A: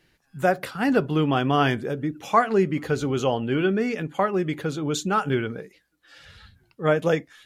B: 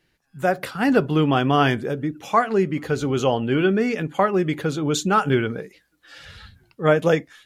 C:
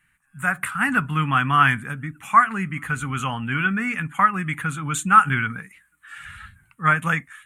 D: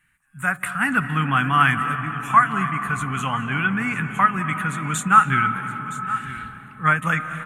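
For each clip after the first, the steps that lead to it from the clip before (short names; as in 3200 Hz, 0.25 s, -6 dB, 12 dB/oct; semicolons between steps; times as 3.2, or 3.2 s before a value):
AGC gain up to 10 dB; gain -4 dB
EQ curve 170 Hz 0 dB, 250 Hz -4 dB, 370 Hz -20 dB, 550 Hz -19 dB, 1200 Hz +9 dB, 2400 Hz +6 dB, 5000 Hz -17 dB, 8700 Hz +13 dB, 13000 Hz +2 dB; gain -1 dB
echo 0.966 s -14 dB; on a send at -9 dB: reverb RT60 4.3 s, pre-delay 0.141 s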